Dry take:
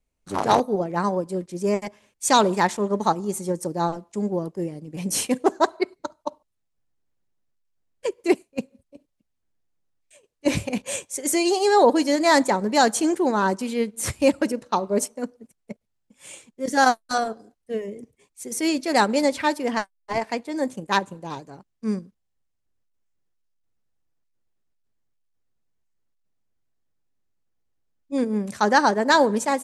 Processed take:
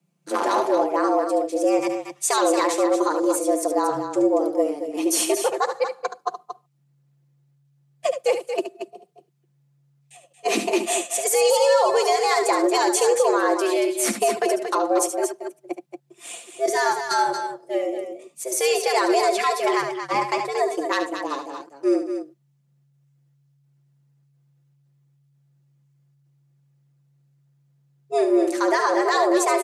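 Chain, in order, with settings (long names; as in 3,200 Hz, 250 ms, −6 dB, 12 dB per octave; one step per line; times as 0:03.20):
frequency shifter +140 Hz
comb filter 5.8 ms, depth 48%
brickwall limiter −16 dBFS, peak gain reduction 13.5 dB
on a send: loudspeakers that aren't time-aligned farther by 25 metres −9 dB, 79 metres −8 dB
on the sum: level +4 dB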